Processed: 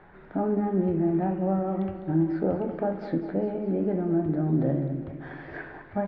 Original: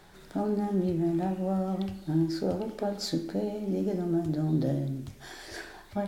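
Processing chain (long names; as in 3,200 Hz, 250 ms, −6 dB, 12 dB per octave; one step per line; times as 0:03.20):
low-pass filter 2,100 Hz 24 dB per octave
low-shelf EQ 200 Hz −3.5 dB
on a send: repeating echo 204 ms, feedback 59%, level −12 dB
on the sum: level +4 dB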